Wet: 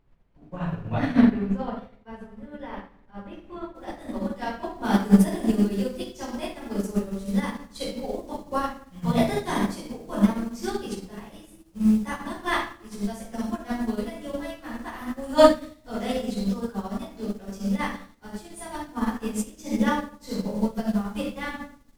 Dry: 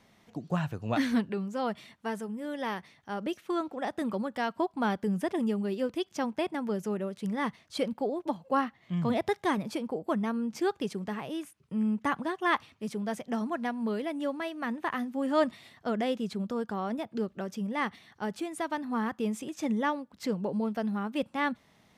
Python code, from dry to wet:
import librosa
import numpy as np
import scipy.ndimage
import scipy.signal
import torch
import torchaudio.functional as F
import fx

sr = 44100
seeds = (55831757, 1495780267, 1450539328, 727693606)

y = fx.room_shoebox(x, sr, seeds[0], volume_m3=420.0, walls='mixed', distance_m=4.9)
y = fx.dmg_noise_colour(y, sr, seeds[1], colour='brown', level_db=-30.0)
y = fx.bass_treble(y, sr, bass_db=0, treble_db=fx.steps((0.0, -10.0), (3.74, 6.0), (4.83, 13.0)))
y = fx.upward_expand(y, sr, threshold_db=-31.0, expansion=2.5)